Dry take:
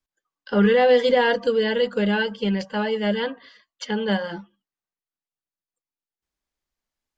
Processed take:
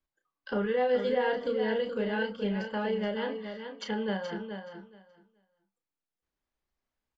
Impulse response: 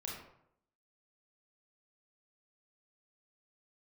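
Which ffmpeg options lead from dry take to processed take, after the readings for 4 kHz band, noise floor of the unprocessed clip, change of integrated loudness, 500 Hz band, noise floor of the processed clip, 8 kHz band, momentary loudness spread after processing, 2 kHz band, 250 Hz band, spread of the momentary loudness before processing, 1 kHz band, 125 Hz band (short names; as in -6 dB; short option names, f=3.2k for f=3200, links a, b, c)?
-12.0 dB, under -85 dBFS, -10.0 dB, -8.5 dB, under -85 dBFS, n/a, 13 LU, -10.0 dB, -9.5 dB, 13 LU, -9.0 dB, -10.5 dB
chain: -filter_complex "[0:a]lowpass=f=2.2k:p=1,acompressor=threshold=-36dB:ratio=2,asplit=2[a][b];[b]adelay=32,volume=-6.5dB[c];[a][c]amix=inputs=2:normalize=0,aecho=1:1:425|850|1275:0.398|0.0637|0.0102"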